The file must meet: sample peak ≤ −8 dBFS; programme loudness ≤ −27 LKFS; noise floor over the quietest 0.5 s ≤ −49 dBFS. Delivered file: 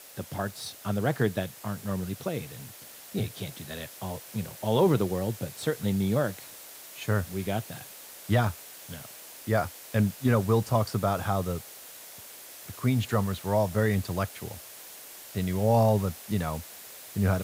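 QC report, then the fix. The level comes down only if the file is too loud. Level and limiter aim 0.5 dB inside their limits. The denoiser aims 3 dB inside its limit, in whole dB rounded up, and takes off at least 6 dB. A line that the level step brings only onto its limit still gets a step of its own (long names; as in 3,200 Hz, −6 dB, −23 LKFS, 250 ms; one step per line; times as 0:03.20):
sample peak −12.5 dBFS: in spec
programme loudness −29.0 LKFS: in spec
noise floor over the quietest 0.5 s −46 dBFS: out of spec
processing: broadband denoise 6 dB, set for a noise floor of −46 dBFS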